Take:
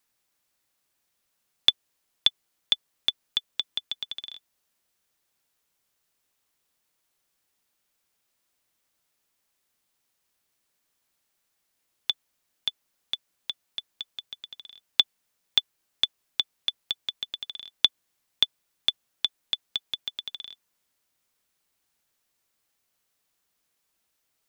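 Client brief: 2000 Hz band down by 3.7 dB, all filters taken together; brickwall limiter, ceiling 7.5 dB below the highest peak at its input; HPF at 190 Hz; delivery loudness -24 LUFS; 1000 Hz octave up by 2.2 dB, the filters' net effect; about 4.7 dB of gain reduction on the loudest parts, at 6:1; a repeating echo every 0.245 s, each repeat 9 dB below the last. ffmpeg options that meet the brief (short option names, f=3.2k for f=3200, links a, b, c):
-af "highpass=190,equalizer=f=1k:t=o:g=4.5,equalizer=f=2k:t=o:g=-6,acompressor=threshold=-22dB:ratio=6,alimiter=limit=-12dB:level=0:latency=1,aecho=1:1:245|490|735|980:0.355|0.124|0.0435|0.0152,volume=11.5dB"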